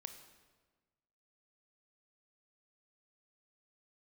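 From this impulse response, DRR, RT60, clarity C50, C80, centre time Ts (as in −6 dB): 7.5 dB, 1.4 s, 9.0 dB, 10.5 dB, 19 ms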